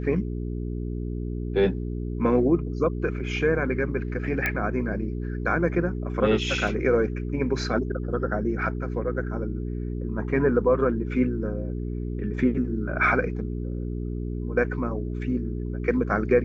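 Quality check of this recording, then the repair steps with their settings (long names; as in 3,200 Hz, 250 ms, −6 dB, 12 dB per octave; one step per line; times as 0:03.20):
mains hum 60 Hz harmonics 7 −30 dBFS
0:04.46: click −11 dBFS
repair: click removal
hum removal 60 Hz, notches 7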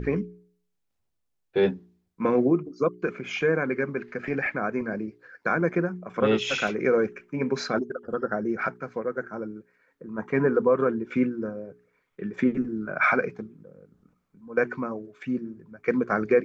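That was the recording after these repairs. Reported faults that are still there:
none of them is left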